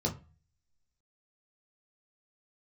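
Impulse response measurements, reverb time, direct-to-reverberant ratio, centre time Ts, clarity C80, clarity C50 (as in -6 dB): 0.35 s, -1.5 dB, 14 ms, 20.0 dB, 14.5 dB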